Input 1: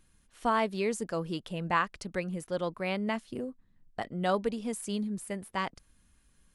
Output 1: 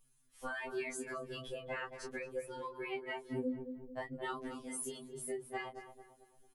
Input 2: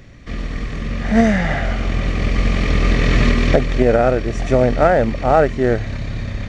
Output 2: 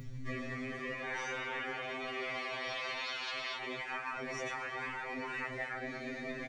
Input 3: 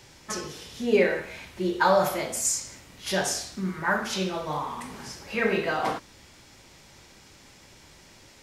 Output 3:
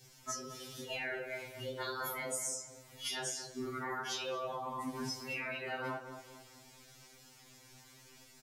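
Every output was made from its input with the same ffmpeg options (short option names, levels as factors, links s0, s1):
-filter_complex "[0:a]afftdn=nr=14:nf=-35,afftfilt=real='re*lt(hypot(re,im),0.178)':imag='im*lt(hypot(re,im),0.178)':win_size=1024:overlap=0.75,acrossover=split=250|3800[s0][s1][s2];[s1]dynaudnorm=f=330:g=3:m=1.5[s3];[s0][s3][s2]amix=inputs=3:normalize=0,lowshelf=f=320:g=3.5,flanger=delay=19.5:depth=5:speed=0.96,aemphasis=mode=production:type=50fm,acompressor=threshold=0.00891:ratio=16,asplit=2[s4][s5];[s5]adelay=223,lowpass=f=1300:p=1,volume=0.398,asplit=2[s6][s7];[s7]adelay=223,lowpass=f=1300:p=1,volume=0.47,asplit=2[s8][s9];[s9]adelay=223,lowpass=f=1300:p=1,volume=0.47,asplit=2[s10][s11];[s11]adelay=223,lowpass=f=1300:p=1,volume=0.47,asplit=2[s12][s13];[s13]adelay=223,lowpass=f=1300:p=1,volume=0.47[s14];[s4][s6][s8][s10][s12][s14]amix=inputs=6:normalize=0,afftfilt=real='re*2.45*eq(mod(b,6),0)':imag='im*2.45*eq(mod(b,6),0)':win_size=2048:overlap=0.75,volume=2.24"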